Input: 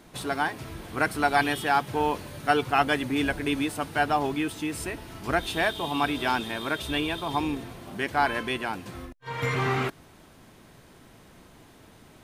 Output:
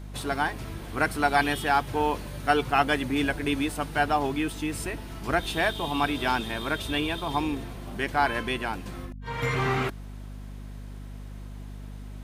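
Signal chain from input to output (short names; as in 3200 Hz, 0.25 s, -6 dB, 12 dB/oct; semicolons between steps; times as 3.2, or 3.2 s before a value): hum 50 Hz, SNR 11 dB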